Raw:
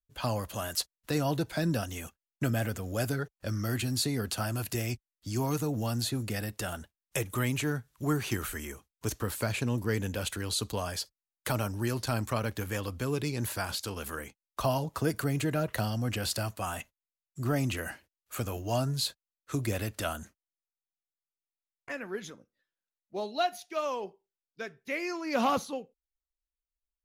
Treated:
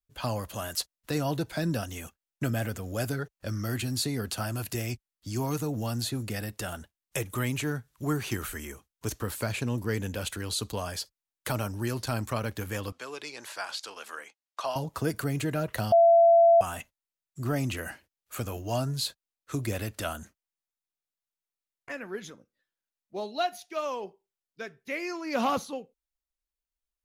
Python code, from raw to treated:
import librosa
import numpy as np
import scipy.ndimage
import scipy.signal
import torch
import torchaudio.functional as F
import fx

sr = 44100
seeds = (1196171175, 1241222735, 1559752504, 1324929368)

y = fx.bandpass_edges(x, sr, low_hz=650.0, high_hz=7000.0, at=(12.92, 14.76))
y = fx.edit(y, sr, fx.bleep(start_s=15.92, length_s=0.69, hz=675.0, db=-14.5), tone=tone)